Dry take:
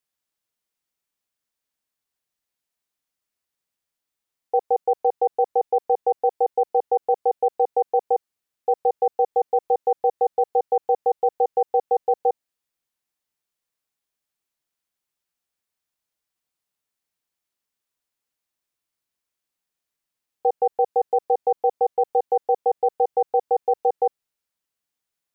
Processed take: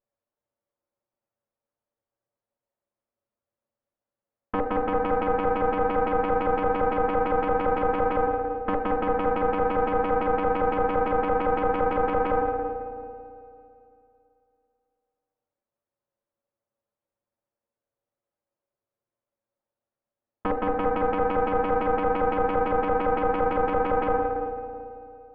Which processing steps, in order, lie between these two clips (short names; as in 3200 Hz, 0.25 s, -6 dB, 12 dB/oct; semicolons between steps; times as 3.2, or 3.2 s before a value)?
minimum comb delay 8.7 ms; LPF 1000 Hz 12 dB/oct; bell 560 Hz +11.5 dB 0.2 oct; spring tank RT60 2.8 s, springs 34/55 ms, chirp 45 ms, DRR 6 dB; added harmonics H 6 -10 dB, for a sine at -4.5 dBFS; negative-ratio compressor -23 dBFS, ratio -1